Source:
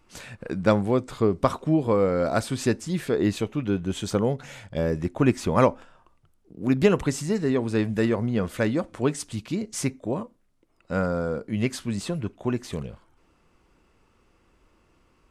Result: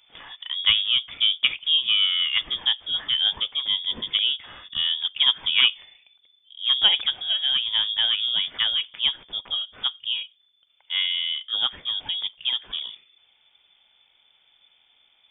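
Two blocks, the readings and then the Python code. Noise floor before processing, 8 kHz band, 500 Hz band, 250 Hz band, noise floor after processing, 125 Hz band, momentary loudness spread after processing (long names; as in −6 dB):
−64 dBFS, below −40 dB, below −25 dB, below −25 dB, −64 dBFS, below −25 dB, 10 LU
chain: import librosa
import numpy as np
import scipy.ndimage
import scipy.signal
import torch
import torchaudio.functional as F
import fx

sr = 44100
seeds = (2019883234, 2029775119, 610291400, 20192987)

y = fx.freq_invert(x, sr, carrier_hz=3500)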